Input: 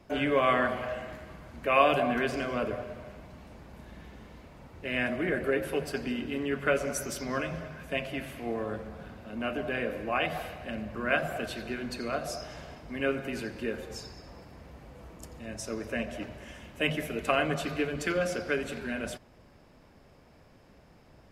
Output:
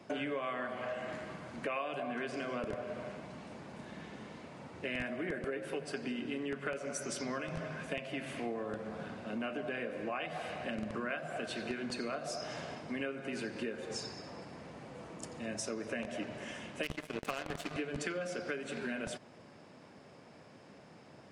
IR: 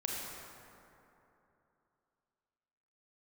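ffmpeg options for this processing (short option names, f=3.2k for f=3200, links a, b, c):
-filter_complex "[0:a]acrossover=split=110[a][b];[a]acrusher=bits=4:dc=4:mix=0:aa=0.000001[c];[b]acompressor=threshold=-38dB:ratio=8[d];[c][d]amix=inputs=2:normalize=0,aresample=22050,aresample=44100,asettb=1/sr,asplit=3[e][f][g];[e]atrim=end=16.834[h];[f]atrim=start=16.83:end=17.74,asetpts=PTS-STARTPTS,afade=t=in:d=0.004:c=qsin,afade=t=out:st=0.906:d=0.004:c=qsin,aeval=exprs='0.0376*(cos(1*acos(clip(val(0)/0.0376,-1,1)))-cos(1*PI/2))+0.00531*(cos(7*acos(clip(val(0)/0.0376,-1,1)))-cos(7*PI/2))':c=same[i];[g]atrim=start=17.736[j];[h][i]acrossfade=d=0.004:c1=hsin:c2=qsin[k];[k][j]acrossfade=d=0.004:c1=qsin:c2=hsin,volume=3dB"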